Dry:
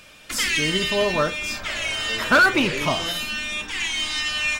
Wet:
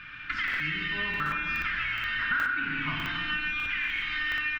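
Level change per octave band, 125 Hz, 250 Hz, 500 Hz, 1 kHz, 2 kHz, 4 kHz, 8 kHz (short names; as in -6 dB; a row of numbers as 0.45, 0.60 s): -7.5 dB, -13.0 dB, -25.0 dB, -8.5 dB, -4.5 dB, -12.0 dB, under -25 dB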